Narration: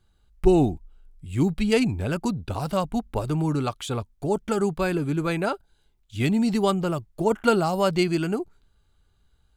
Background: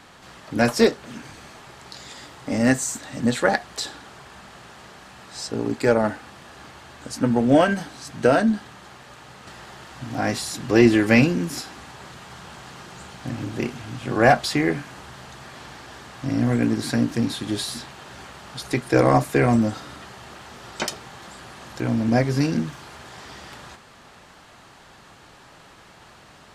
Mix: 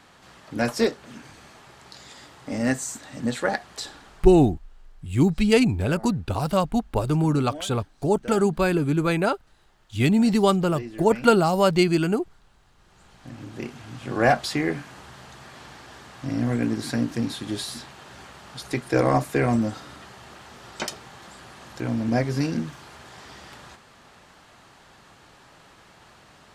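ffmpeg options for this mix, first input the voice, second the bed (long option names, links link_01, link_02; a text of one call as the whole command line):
ffmpeg -i stem1.wav -i stem2.wav -filter_complex "[0:a]adelay=3800,volume=3dB[link_01];[1:a]volume=14dB,afade=type=out:start_time=3.99:duration=0.55:silence=0.133352,afade=type=in:start_time=12.77:duration=1.44:silence=0.112202[link_02];[link_01][link_02]amix=inputs=2:normalize=0" out.wav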